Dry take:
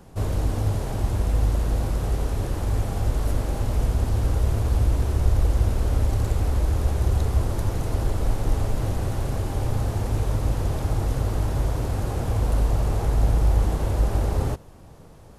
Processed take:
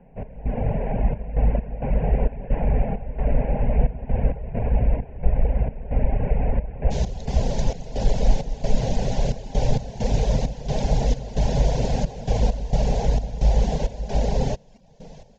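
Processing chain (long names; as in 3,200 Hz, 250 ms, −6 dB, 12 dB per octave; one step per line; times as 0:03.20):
Butterworth low-pass 2,600 Hz 72 dB per octave, from 0:06.90 7,000 Hz
reverb reduction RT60 0.66 s
automatic gain control gain up to 12 dB
gate pattern "x.xxx.x.xx.x" 66 BPM −12 dB
phaser with its sweep stopped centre 330 Hz, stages 6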